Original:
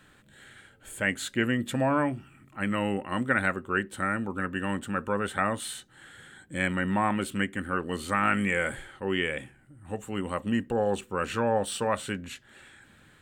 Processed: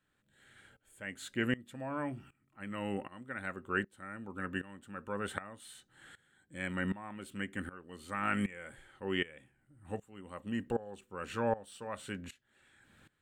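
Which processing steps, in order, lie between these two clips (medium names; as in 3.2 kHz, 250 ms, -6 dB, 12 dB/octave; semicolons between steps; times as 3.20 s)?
sawtooth tremolo in dB swelling 1.3 Hz, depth 20 dB; trim -3.5 dB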